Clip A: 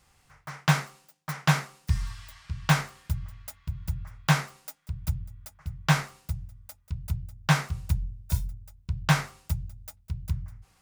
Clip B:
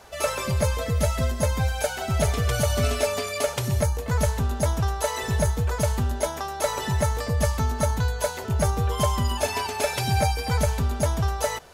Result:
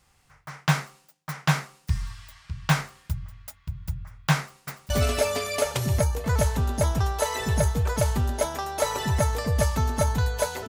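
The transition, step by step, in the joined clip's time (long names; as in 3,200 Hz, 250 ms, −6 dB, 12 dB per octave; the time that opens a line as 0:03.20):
clip A
0:04.38–0:04.90: delay throw 290 ms, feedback 25%, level −2 dB
0:04.90: continue with clip B from 0:02.72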